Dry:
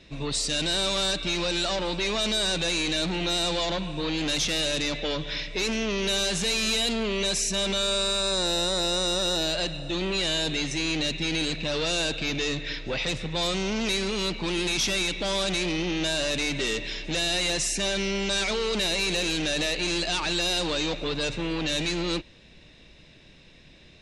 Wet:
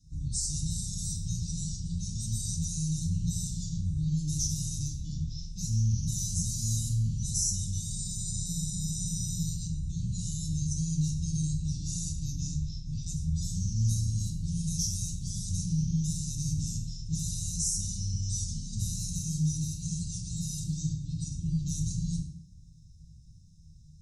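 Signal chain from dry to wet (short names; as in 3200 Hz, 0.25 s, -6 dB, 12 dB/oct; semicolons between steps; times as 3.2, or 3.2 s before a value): octaver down 1 oct, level +1 dB; dynamic EQ 2700 Hz, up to +5 dB, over -43 dBFS, Q 1.4; Chebyshev band-stop 180–5800 Hz, order 4; 19.18–21.46 notch comb 500 Hz; FDN reverb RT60 0.6 s, low-frequency decay 1.3×, high-frequency decay 0.85×, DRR 0 dB; gain -3.5 dB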